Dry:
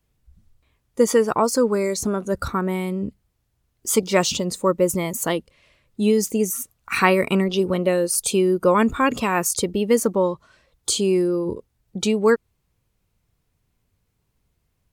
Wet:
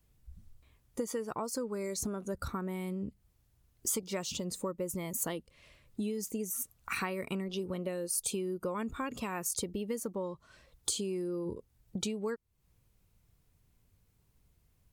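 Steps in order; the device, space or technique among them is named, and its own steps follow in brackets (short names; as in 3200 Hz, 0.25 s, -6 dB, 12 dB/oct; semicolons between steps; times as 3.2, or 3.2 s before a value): ASMR close-microphone chain (low shelf 190 Hz +5 dB; compressor 5:1, threshold -32 dBFS, peak gain reduction 19 dB; high shelf 7000 Hz +6 dB); gain -3 dB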